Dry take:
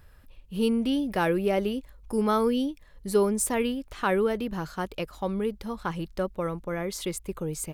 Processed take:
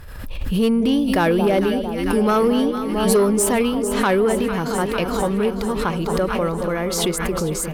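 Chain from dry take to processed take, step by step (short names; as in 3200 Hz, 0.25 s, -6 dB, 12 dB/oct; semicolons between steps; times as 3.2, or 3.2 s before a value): echo with dull and thin repeats by turns 0.225 s, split 990 Hz, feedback 83%, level -9 dB; sine folder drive 4 dB, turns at -11 dBFS; backwards sustainer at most 36 dB/s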